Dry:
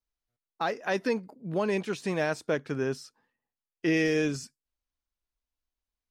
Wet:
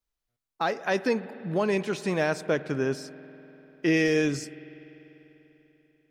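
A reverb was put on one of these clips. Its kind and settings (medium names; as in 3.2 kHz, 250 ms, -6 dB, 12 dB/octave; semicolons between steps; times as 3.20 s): spring tank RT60 3.8 s, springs 49 ms, chirp 75 ms, DRR 15 dB; trim +2.5 dB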